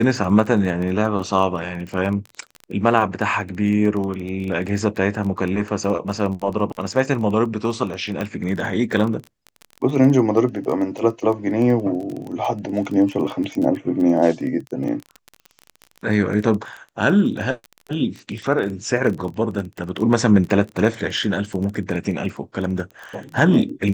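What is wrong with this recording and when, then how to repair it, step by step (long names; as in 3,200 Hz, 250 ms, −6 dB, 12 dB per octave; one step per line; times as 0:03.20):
surface crackle 20 per second −26 dBFS
0:08.21: click −12 dBFS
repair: click removal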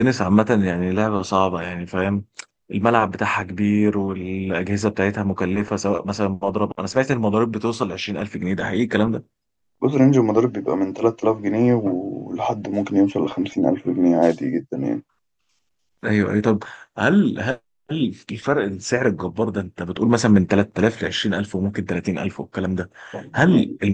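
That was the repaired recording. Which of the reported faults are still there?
none of them is left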